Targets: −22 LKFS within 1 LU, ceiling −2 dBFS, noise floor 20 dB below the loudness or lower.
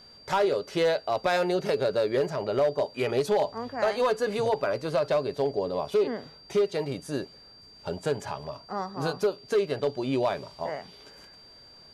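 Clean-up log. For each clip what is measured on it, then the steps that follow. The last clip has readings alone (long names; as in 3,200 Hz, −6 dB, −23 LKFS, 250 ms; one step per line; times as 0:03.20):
share of clipped samples 1.0%; peaks flattened at −18.0 dBFS; interfering tone 4,700 Hz; level of the tone −50 dBFS; integrated loudness −28.0 LKFS; sample peak −18.0 dBFS; target loudness −22.0 LKFS
→ clipped peaks rebuilt −18 dBFS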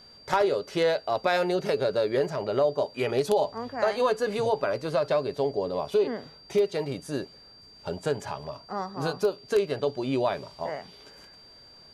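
share of clipped samples 0.0%; interfering tone 4,700 Hz; level of the tone −50 dBFS
→ notch filter 4,700 Hz, Q 30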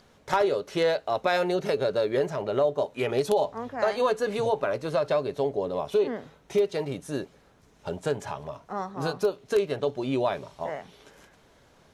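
interfering tone none found; integrated loudness −27.5 LKFS; sample peak −9.0 dBFS; target loudness −22.0 LKFS
→ level +5.5 dB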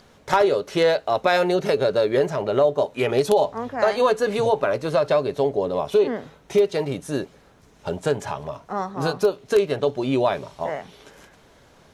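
integrated loudness −22.0 LKFS; sample peak −3.5 dBFS; background noise floor −54 dBFS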